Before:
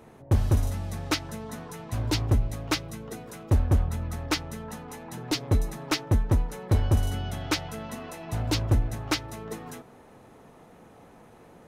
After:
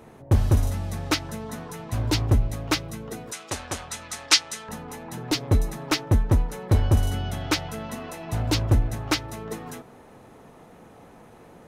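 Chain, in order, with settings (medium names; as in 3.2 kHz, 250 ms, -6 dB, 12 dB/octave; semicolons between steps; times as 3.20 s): 3.32–4.69 s: frequency weighting ITU-R 468; trim +3 dB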